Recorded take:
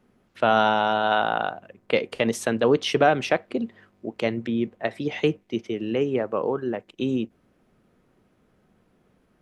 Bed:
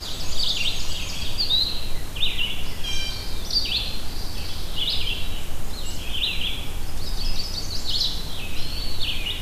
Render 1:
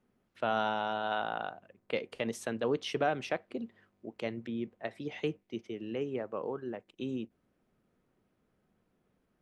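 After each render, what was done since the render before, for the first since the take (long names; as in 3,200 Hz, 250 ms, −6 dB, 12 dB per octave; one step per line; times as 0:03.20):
level −11.5 dB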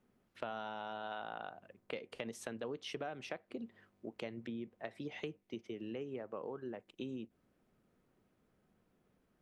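downward compressor 5 to 1, threshold −40 dBFS, peak gain reduction 14 dB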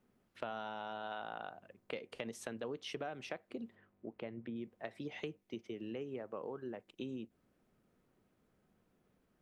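0:03.75–0:04.56: high-frequency loss of the air 370 metres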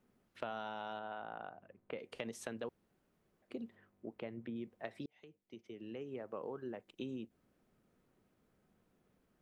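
0:00.99–0:01.99: high-frequency loss of the air 420 metres
0:02.69–0:03.42: fill with room tone
0:05.06–0:06.32: fade in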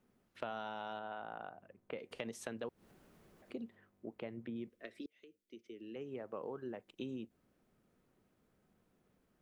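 0:02.11–0:03.55: upward compression, threshold −51 dBFS
0:04.69–0:05.96: phaser with its sweep stopped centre 340 Hz, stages 4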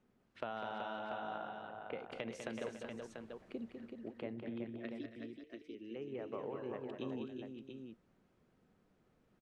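high-frequency loss of the air 71 metres
multi-tap delay 200/231/281/377/558/689 ms −7/−17/−15/−6.5/−15/−7 dB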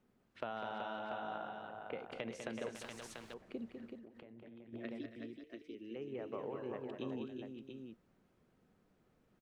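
0:02.75–0:03.34: every bin compressed towards the loudest bin 2 to 1
0:03.97–0:04.73: downward compressor 16 to 1, threshold −51 dBFS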